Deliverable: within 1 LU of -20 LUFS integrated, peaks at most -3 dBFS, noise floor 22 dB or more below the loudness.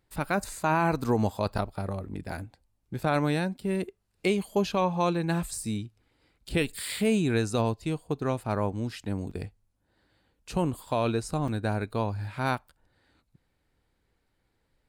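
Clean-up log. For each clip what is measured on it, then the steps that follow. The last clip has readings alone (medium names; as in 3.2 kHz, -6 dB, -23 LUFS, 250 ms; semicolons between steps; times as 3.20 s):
dropouts 3; longest dropout 4.2 ms; loudness -29.5 LUFS; peak level -15.0 dBFS; loudness target -20.0 LUFS
-> interpolate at 1.58/9.31/11.48 s, 4.2 ms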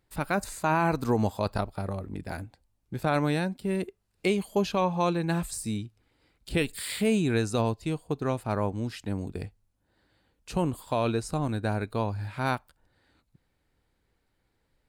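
dropouts 0; loudness -29.5 LUFS; peak level -15.0 dBFS; loudness target -20.0 LUFS
-> trim +9.5 dB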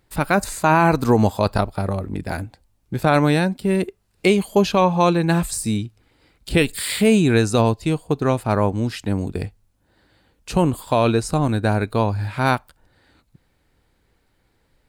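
loudness -20.0 LUFS; peak level -5.5 dBFS; noise floor -65 dBFS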